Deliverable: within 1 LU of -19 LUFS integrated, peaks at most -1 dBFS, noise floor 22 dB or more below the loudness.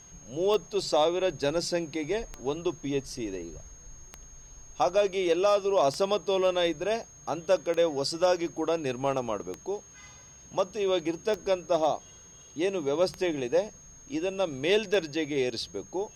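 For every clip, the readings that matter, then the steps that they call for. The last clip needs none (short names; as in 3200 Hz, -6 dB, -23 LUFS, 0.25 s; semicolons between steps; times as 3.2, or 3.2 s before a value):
clicks 9; steady tone 6500 Hz; tone level -50 dBFS; loudness -28.5 LUFS; peak -14.5 dBFS; loudness target -19.0 LUFS
-> de-click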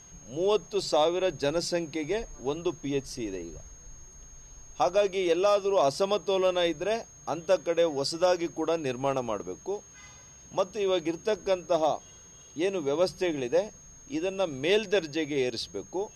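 clicks 0; steady tone 6500 Hz; tone level -50 dBFS
-> notch 6500 Hz, Q 30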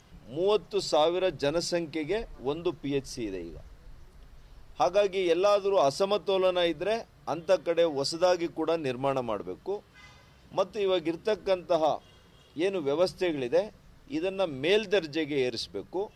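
steady tone none; loudness -28.5 LUFS; peak -14.5 dBFS; loudness target -19.0 LUFS
-> gain +9.5 dB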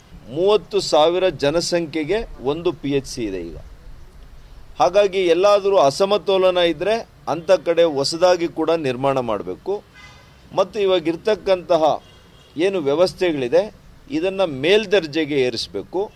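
loudness -19.0 LUFS; peak -5.0 dBFS; noise floor -47 dBFS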